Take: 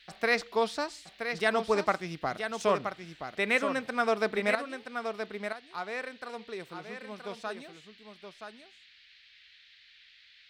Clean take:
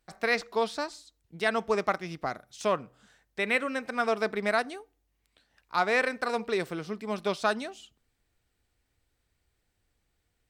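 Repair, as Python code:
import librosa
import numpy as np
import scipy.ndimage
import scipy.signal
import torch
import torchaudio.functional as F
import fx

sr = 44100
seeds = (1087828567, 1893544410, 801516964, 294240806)

y = fx.noise_reduce(x, sr, print_start_s=8.86, print_end_s=9.36, reduce_db=18.0)
y = fx.fix_echo_inverse(y, sr, delay_ms=974, level_db=-7.5)
y = fx.fix_level(y, sr, at_s=4.55, step_db=11.0)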